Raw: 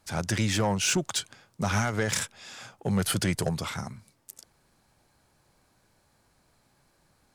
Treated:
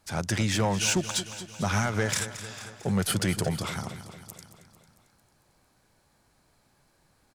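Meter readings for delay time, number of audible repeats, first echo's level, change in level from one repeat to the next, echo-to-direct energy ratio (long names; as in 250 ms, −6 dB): 224 ms, 5, −13.0 dB, −4.5 dB, −11.0 dB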